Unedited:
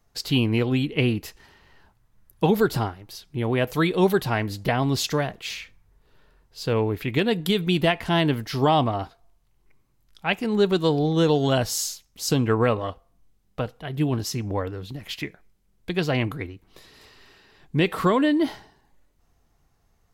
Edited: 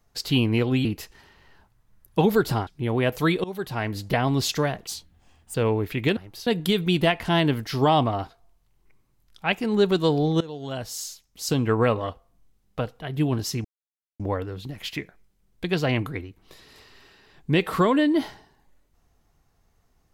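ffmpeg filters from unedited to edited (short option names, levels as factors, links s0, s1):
-filter_complex "[0:a]asplit=10[s0][s1][s2][s3][s4][s5][s6][s7][s8][s9];[s0]atrim=end=0.852[s10];[s1]atrim=start=1.098:end=2.922[s11];[s2]atrim=start=3.218:end=3.99,asetpts=PTS-STARTPTS,afade=t=out:st=0.768:d=0.004:c=hsin:silence=0.0707946[s12];[s3]atrim=start=3.99:end=5.424,asetpts=PTS-STARTPTS,afade=t=in:d=0.57:silence=0.0707946[s13];[s4]atrim=start=5.42:end=6.65,asetpts=PTS-STARTPTS,asetrate=80262,aresample=44100[s14];[s5]atrim=start=6.646:end=7.272[s15];[s6]atrim=start=2.918:end=3.222[s16];[s7]atrim=start=7.268:end=11.21,asetpts=PTS-STARTPTS,afade=t=out:st=3.938:d=0.004:c=hsin:silence=0.0891251[s17];[s8]atrim=start=11.21:end=14.45,asetpts=PTS-STARTPTS,afade=t=in:d=1.44:silence=0.0891251,afade=t=out:st=3.236:d=0.004:c=hsin,apad=pad_dur=0.55[s18];[s9]atrim=start=14.45,asetpts=PTS-STARTPTS,afade=t=in:d=0.004:c=hsin[s19];[s10][s11]acrossfade=d=0.004:c1=hsin:c2=hsin[s20];[s12][s13]concat=n=2:v=0:a=1[s21];[s20][s21]acrossfade=d=0.004:c1=hsin:c2=hsin[s22];[s22][s14]acrossfade=d=0.004:c1=hsin:c2=hsin[s23];[s23][s15]acrossfade=d=0.004:c1=hsin:c2=hsin[s24];[s24][s16]acrossfade=d=0.004:c1=hsin:c2=hsin[s25];[s17][s18][s19]concat=n=3:v=0:a=1[s26];[s25][s26]acrossfade=d=0.004:c1=hsin:c2=hsin"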